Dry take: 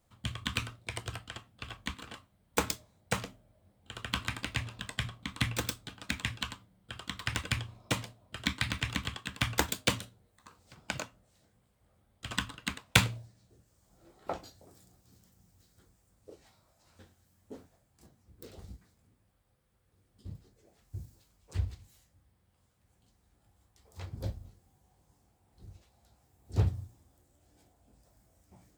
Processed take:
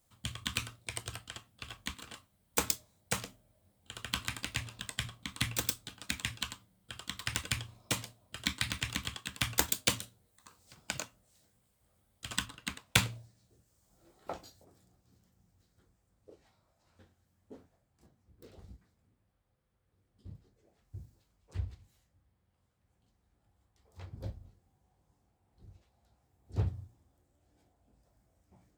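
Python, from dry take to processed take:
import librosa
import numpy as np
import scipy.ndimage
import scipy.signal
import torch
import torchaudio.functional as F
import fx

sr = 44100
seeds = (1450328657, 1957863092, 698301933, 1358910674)

y = fx.high_shelf(x, sr, hz=4300.0, db=fx.steps((0.0, 11.0), (12.45, 5.0), (14.63, -7.0)))
y = y * librosa.db_to_amplitude(-4.5)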